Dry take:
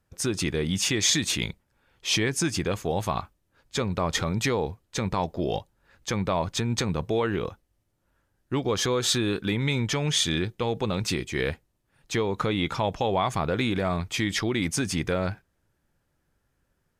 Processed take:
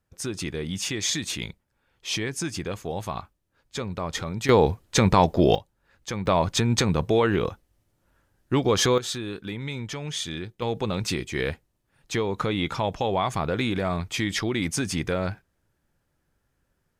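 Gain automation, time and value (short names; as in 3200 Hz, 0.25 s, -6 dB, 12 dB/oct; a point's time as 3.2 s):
-4 dB
from 4.49 s +9 dB
from 5.55 s -3 dB
from 6.26 s +4.5 dB
from 8.98 s -7 dB
from 10.62 s 0 dB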